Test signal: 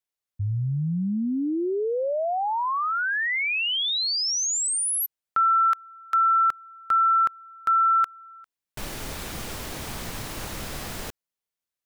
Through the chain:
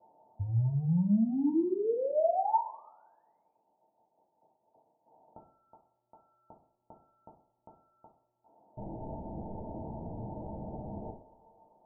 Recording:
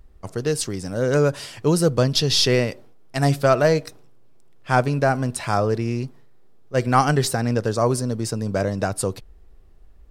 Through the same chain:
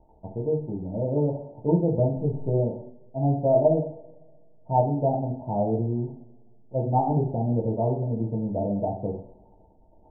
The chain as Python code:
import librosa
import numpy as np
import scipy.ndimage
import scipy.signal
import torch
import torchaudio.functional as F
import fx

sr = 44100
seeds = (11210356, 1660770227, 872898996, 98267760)

y = x + 0.5 * 10.0 ** (-16.5 / 20.0) * np.diff(np.sign(x), prepend=np.sign(x[:1]))
y = scipy.signal.sosfilt(scipy.signal.cheby1(6, 6, 920.0, 'lowpass', fs=sr, output='sos'), y)
y = fx.rev_double_slope(y, sr, seeds[0], early_s=0.46, late_s=1.7, knee_db=-22, drr_db=-2.5)
y = y * librosa.db_to_amplitude(-4.5)